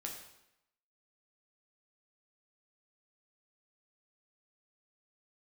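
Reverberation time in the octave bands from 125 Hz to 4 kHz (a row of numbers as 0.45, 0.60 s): 0.80, 0.85, 0.80, 0.85, 0.80, 0.75 s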